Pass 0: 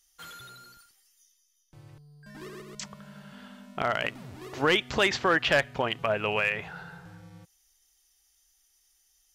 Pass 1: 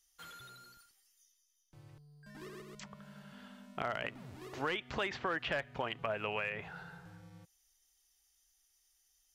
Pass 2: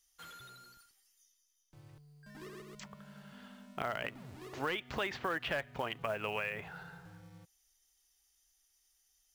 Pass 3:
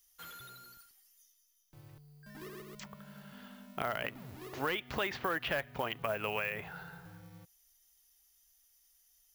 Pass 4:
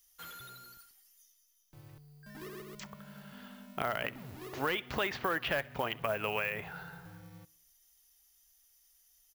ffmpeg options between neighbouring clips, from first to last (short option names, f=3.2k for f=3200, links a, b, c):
-filter_complex "[0:a]acrossover=split=640|3300[a][b][c];[a]acompressor=threshold=-34dB:ratio=4[d];[b]acompressor=threshold=-29dB:ratio=4[e];[c]acompressor=threshold=-50dB:ratio=4[f];[d][e][f]amix=inputs=3:normalize=0,volume=-6dB"
-af "acrusher=bits=6:mode=log:mix=0:aa=0.000001"
-af "aexciter=amount=3:drive=5.3:freq=11k,volume=1.5dB"
-af "aecho=1:1:64|128|192|256:0.0668|0.0381|0.0217|0.0124,volume=1.5dB"